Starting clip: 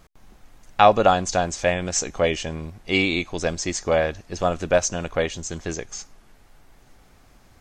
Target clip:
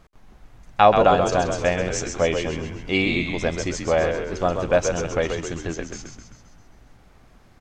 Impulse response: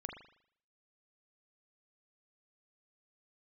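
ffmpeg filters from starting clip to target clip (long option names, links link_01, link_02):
-filter_complex "[0:a]highshelf=frequency=5100:gain=-9.5,asplit=8[link_01][link_02][link_03][link_04][link_05][link_06][link_07][link_08];[link_02]adelay=131,afreqshift=-61,volume=-6dB[link_09];[link_03]adelay=262,afreqshift=-122,volume=-11.2dB[link_10];[link_04]adelay=393,afreqshift=-183,volume=-16.4dB[link_11];[link_05]adelay=524,afreqshift=-244,volume=-21.6dB[link_12];[link_06]adelay=655,afreqshift=-305,volume=-26.8dB[link_13];[link_07]adelay=786,afreqshift=-366,volume=-32dB[link_14];[link_08]adelay=917,afreqshift=-427,volume=-37.2dB[link_15];[link_01][link_09][link_10][link_11][link_12][link_13][link_14][link_15]amix=inputs=8:normalize=0"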